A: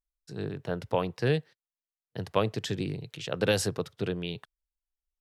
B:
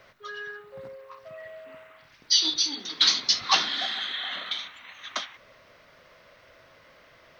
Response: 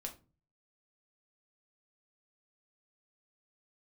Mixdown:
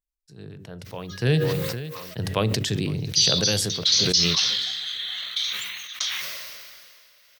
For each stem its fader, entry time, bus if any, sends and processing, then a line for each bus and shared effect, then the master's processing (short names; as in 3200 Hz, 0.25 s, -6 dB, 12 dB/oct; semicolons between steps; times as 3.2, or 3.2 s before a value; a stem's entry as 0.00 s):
0.94 s -15 dB -> 1.27 s -3 dB -> 3.29 s -3 dB -> 3.73 s -14.5 dB, 0.00 s, send -10.5 dB, echo send -20.5 dB, low shelf 250 Hz +11 dB; de-hum 95.46 Hz, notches 6
+1.5 dB, 0.85 s, no send, no echo send, pre-emphasis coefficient 0.9; auto duck -6 dB, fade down 1.70 s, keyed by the first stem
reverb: on, RT60 0.35 s, pre-delay 5 ms
echo: feedback echo 0.511 s, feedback 41%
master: high shelf 2100 Hz +11 dB; vibrato 0.4 Hz 15 cents; sustainer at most 28 dB/s